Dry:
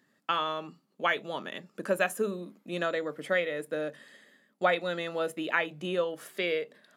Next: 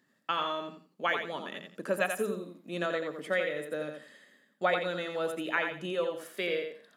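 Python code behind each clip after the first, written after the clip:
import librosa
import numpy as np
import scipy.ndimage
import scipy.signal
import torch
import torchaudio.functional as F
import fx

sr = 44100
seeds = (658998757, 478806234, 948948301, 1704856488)

y = fx.echo_feedback(x, sr, ms=86, feedback_pct=23, wet_db=-6)
y = y * 10.0 ** (-2.5 / 20.0)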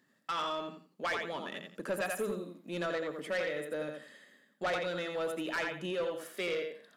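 y = 10.0 ** (-28.0 / 20.0) * np.tanh(x / 10.0 ** (-28.0 / 20.0))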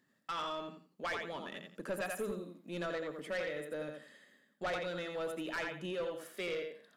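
y = fx.low_shelf(x, sr, hz=94.0, db=8.5)
y = y * 10.0 ** (-4.0 / 20.0)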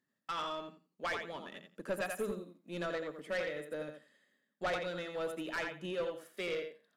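y = fx.upward_expand(x, sr, threshold_db=-59.0, expansion=1.5)
y = y * 10.0 ** (2.5 / 20.0)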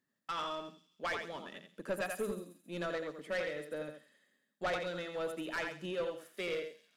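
y = fx.echo_wet_highpass(x, sr, ms=135, feedback_pct=49, hz=5200.0, wet_db=-9)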